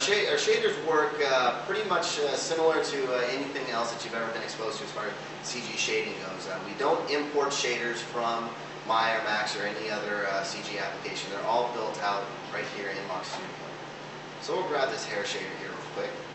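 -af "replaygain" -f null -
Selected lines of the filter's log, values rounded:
track_gain = +8.8 dB
track_peak = 0.205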